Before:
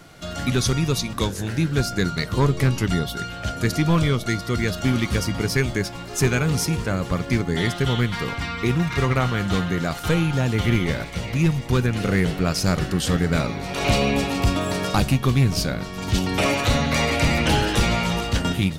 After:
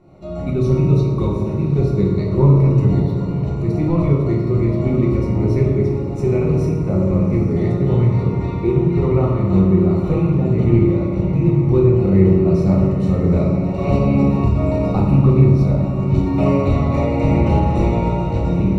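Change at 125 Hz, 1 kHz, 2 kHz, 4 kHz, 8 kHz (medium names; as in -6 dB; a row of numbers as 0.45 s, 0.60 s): +7.5 dB, -0.5 dB, -11.5 dB, under -15 dB, under -15 dB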